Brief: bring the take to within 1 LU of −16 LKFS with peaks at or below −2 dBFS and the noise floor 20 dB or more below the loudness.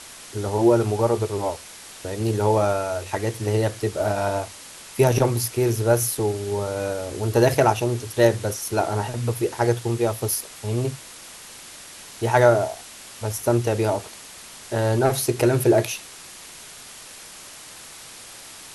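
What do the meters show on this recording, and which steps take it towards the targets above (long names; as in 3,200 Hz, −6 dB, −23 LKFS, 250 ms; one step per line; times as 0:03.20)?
background noise floor −42 dBFS; target noise floor −43 dBFS; integrated loudness −22.5 LKFS; sample peak −3.5 dBFS; target loudness −16.0 LKFS
→ broadband denoise 6 dB, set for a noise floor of −42 dBFS
level +6.5 dB
brickwall limiter −2 dBFS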